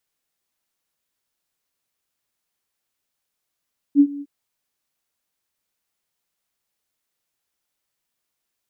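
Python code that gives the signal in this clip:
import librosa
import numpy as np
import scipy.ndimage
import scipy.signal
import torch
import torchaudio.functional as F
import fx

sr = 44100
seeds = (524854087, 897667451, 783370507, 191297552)

y = fx.adsr_tone(sr, wave='sine', hz=285.0, attack_ms=51.0, decay_ms=64.0, sustain_db=-21.0, held_s=0.26, release_ms=47.0, level_db=-7.0)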